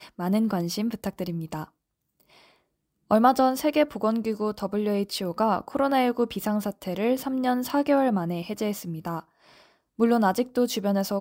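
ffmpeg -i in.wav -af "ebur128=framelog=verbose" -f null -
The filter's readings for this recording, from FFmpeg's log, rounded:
Integrated loudness:
  I:         -25.5 LUFS
  Threshold: -36.1 LUFS
Loudness range:
  LRA:         2.6 LU
  Threshold: -46.1 LUFS
  LRA low:   -27.3 LUFS
  LRA high:  -24.7 LUFS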